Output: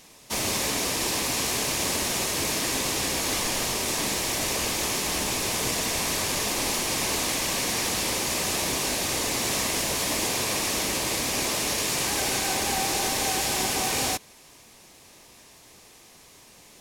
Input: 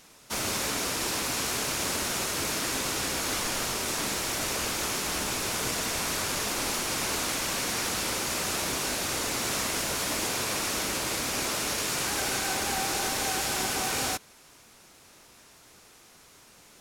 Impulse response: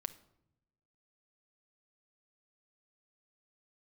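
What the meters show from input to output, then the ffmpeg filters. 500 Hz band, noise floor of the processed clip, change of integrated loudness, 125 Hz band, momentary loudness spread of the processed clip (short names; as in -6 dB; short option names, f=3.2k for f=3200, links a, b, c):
+3.5 dB, -52 dBFS, +3.0 dB, +3.5 dB, 1 LU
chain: -af "equalizer=f=1.4k:w=6:g=-11.5,volume=3.5dB"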